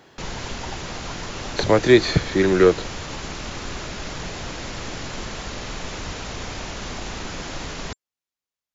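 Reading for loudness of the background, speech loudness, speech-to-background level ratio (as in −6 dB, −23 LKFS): −32.0 LKFS, −18.5 LKFS, 13.5 dB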